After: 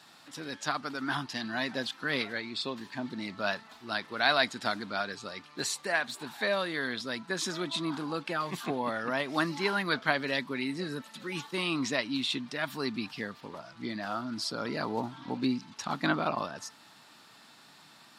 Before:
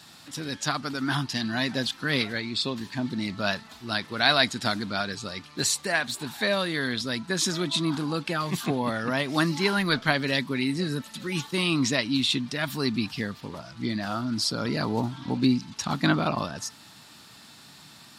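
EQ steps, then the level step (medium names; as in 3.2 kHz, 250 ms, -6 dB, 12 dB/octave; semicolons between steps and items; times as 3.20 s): high-pass 530 Hz 6 dB/octave; treble shelf 2.6 kHz -10 dB; 0.0 dB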